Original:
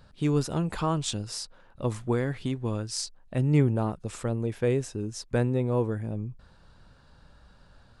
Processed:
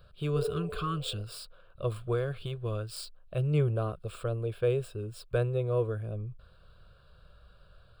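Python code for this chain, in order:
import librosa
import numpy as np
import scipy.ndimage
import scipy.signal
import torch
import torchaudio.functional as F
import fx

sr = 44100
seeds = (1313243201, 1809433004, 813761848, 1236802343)

y = scipy.ndimage.median_filter(x, 3, mode='constant')
y = fx.fixed_phaser(y, sr, hz=1300.0, stages=8)
y = fx.spec_repair(y, sr, seeds[0], start_s=0.39, length_s=0.79, low_hz=410.0, high_hz=1000.0, source='both')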